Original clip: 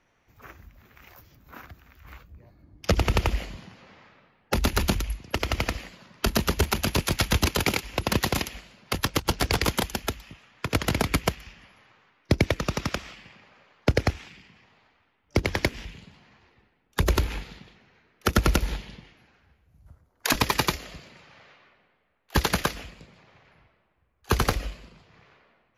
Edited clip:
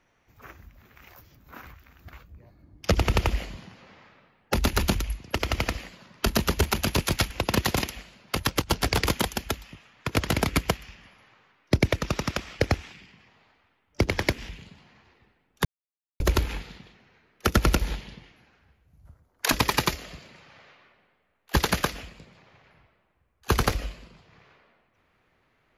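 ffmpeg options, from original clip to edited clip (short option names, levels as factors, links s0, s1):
-filter_complex "[0:a]asplit=6[s0][s1][s2][s3][s4][s5];[s0]atrim=end=1.662[s6];[s1]atrim=start=1.658:end=2.132,asetpts=PTS-STARTPTS,areverse[s7];[s2]atrim=start=2.128:end=7.312[s8];[s3]atrim=start=7.888:end=13.182[s9];[s4]atrim=start=13.958:end=17.01,asetpts=PTS-STARTPTS,afade=t=out:st=3.048:d=0.004:c=hsin,apad=pad_dur=0.55[s10];[s5]atrim=start=17.01,asetpts=PTS-STARTPTS,afade=t=in:d=0.004:c=hsin[s11];[s6][s7]acrossfade=d=0.004:c1=hsin:c2=hsin[s12];[s12][s8]acrossfade=d=0.004:c1=hsin:c2=hsin[s13];[s13][s9]acrossfade=d=0.004:c1=hsin:c2=hsin[s14];[s10][s11]concat=n=2:v=0:a=1[s15];[s14][s15]acrossfade=d=0.004:c1=hsin:c2=hsin"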